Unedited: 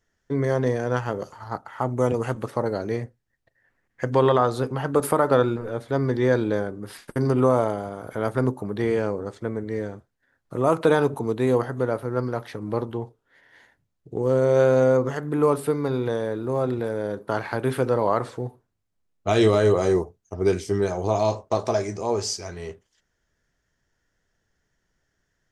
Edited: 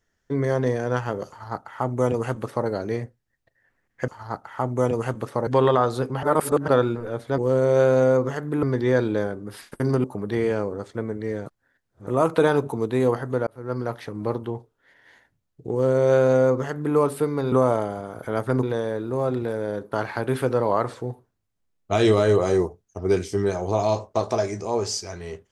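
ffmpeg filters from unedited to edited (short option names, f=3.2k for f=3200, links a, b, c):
-filter_complex "[0:a]asplit=13[a][b][c][d][e][f][g][h][i][j][k][l][m];[a]atrim=end=4.082[n];[b]atrim=start=1.288:end=2.682[o];[c]atrim=start=4.078:end=4.842[p];[d]atrim=start=4.838:end=5.292,asetpts=PTS-STARTPTS,areverse[q];[e]atrim=start=5.288:end=5.992[r];[f]atrim=start=14.178:end=15.432[s];[g]atrim=start=5.988:end=7.402[t];[h]atrim=start=8.508:end=9.932[u];[i]atrim=start=9.928:end=10.542,asetpts=PTS-STARTPTS,areverse[v];[j]atrim=start=10.538:end=11.94,asetpts=PTS-STARTPTS,afade=t=out:st=1.398:d=0.004:c=hsin[w];[k]atrim=start=11.94:end=15.992,asetpts=PTS-STARTPTS,afade=t=in:d=0.35[x];[l]atrim=start=7.398:end=8.512[y];[m]atrim=start=15.988[z];[n][o]acrossfade=d=0.004:c1=hsin:c2=hsin[aa];[aa][p]acrossfade=d=0.004:c1=hsin:c2=hsin[ab];[ab][q]acrossfade=d=0.004:c1=hsin:c2=hsin[ac];[ac][r]acrossfade=d=0.004:c1=hsin:c2=hsin[ad];[ad][s]acrossfade=d=0.004:c1=hsin:c2=hsin[ae];[ae][t]acrossfade=d=0.004:c1=hsin:c2=hsin[af];[af][u]acrossfade=d=0.004:c1=hsin:c2=hsin[ag];[ag][v]acrossfade=d=0.004:c1=hsin:c2=hsin[ah];[w][x]concat=n=2:v=0:a=1[ai];[ah][ai]acrossfade=d=0.004:c1=hsin:c2=hsin[aj];[aj][y]acrossfade=d=0.004:c1=hsin:c2=hsin[ak];[ak][z]acrossfade=d=0.004:c1=hsin:c2=hsin"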